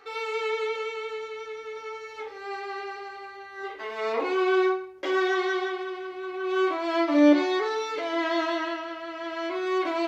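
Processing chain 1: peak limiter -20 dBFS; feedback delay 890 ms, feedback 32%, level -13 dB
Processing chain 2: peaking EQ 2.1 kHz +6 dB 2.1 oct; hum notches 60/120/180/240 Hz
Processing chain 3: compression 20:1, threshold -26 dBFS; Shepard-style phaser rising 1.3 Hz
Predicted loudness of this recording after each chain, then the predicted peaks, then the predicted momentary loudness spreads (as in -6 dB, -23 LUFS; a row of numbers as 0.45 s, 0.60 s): -30.0 LUFS, -25.5 LUFS, -34.0 LUFS; -18.5 dBFS, -6.5 dBFS, -21.0 dBFS; 10 LU, 13 LU, 8 LU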